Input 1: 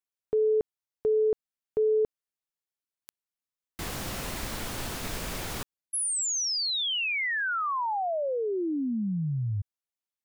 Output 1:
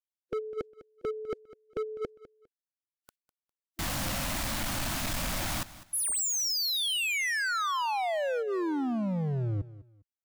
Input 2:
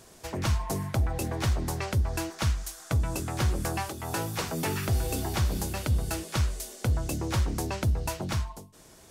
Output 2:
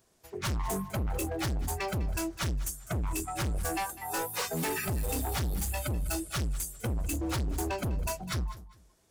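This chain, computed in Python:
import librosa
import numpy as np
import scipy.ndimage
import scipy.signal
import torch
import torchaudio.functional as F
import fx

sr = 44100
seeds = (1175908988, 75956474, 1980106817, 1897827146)

y = fx.noise_reduce_blind(x, sr, reduce_db=21)
y = np.clip(10.0 ** (34.5 / 20.0) * y, -1.0, 1.0) / 10.0 ** (34.5 / 20.0)
y = fx.echo_feedback(y, sr, ms=202, feedback_pct=25, wet_db=-17.0)
y = y * librosa.db_to_amplitude(5.5)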